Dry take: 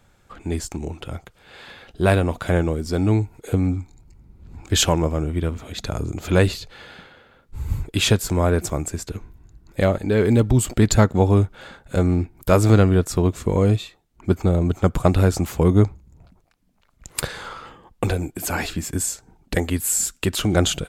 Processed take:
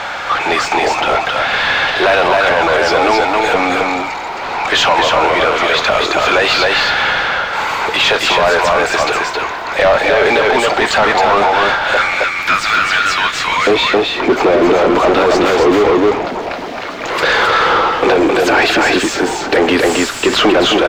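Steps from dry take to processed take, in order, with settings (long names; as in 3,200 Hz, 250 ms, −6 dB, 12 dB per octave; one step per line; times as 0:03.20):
high-pass filter 660 Hz 24 dB per octave, from 0:11.97 1,500 Hz, from 0:13.67 380 Hz
power curve on the samples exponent 0.35
high-frequency loss of the air 220 metres
single-tap delay 267 ms −3 dB
boost into a limiter +10 dB
level −3.5 dB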